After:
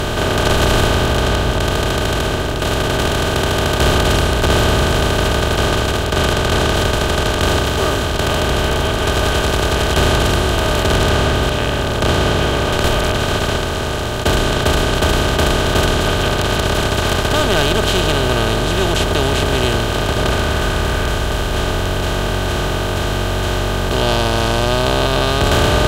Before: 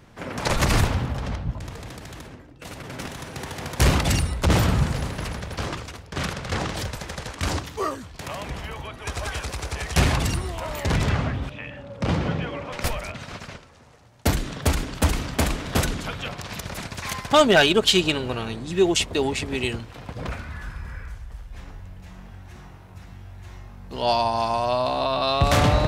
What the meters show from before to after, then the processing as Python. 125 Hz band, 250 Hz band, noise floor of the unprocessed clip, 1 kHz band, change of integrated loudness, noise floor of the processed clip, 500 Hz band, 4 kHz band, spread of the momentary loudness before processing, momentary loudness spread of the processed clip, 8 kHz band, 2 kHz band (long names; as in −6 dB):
+8.5 dB, +8.5 dB, −45 dBFS, +8.5 dB, +8.5 dB, −19 dBFS, +9.5 dB, +10.0 dB, 20 LU, 4 LU, +8.5 dB, +10.5 dB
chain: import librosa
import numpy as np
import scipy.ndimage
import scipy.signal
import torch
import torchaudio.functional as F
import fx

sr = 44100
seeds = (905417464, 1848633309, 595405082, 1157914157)

y = fx.bin_compress(x, sr, power=0.2)
y = fx.low_shelf(y, sr, hz=110.0, db=7.0)
y = F.gain(torch.from_numpy(y), -6.5).numpy()